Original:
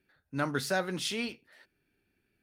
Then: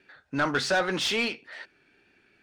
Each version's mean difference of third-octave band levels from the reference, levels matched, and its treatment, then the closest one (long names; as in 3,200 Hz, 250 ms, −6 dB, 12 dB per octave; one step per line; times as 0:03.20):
4.5 dB: low-pass filter 8,300 Hz 24 dB per octave
in parallel at +1 dB: downward compressor, threshold −41 dBFS, peak gain reduction 15 dB
on the sum: tape wow and flutter 25 cents
mid-hump overdrive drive 17 dB, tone 3,200 Hz, clips at −15 dBFS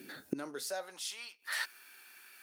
11.0 dB: in parallel at −1 dB: brickwall limiter −28.5 dBFS, peak gain reduction 11 dB
on the sum: gate with flip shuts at −35 dBFS, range −30 dB
bass and treble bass +6 dB, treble +12 dB
high-pass filter sweep 270 Hz → 1,100 Hz, 0:00.20–0:01.23
level +13 dB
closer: first